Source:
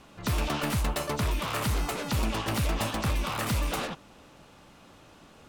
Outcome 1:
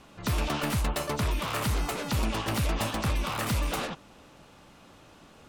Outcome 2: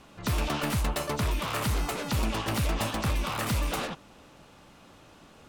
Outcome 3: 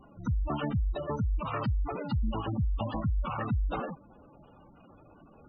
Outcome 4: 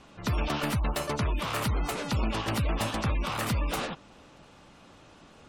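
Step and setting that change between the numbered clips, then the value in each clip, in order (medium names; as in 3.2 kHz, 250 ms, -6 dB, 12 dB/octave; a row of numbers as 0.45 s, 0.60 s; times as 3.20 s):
spectral gate, under each frame's peak: -45 dB, -55 dB, -10 dB, -30 dB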